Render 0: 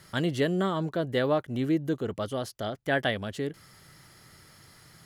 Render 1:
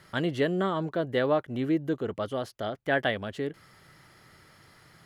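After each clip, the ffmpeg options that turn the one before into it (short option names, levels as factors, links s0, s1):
-af "bass=f=250:g=-4,treble=f=4000:g=-9,volume=1.12"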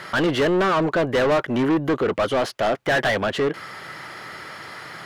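-filter_complex "[0:a]asplit=2[s0][s1];[s1]highpass=f=720:p=1,volume=31.6,asoftclip=type=tanh:threshold=0.266[s2];[s0][s2]amix=inputs=2:normalize=0,lowpass=f=2300:p=1,volume=0.501"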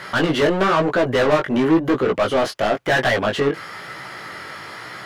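-af "flanger=delay=15.5:depth=5.5:speed=1,volume=1.88"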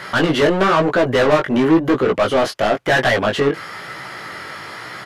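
-af "aresample=32000,aresample=44100,volume=1.33"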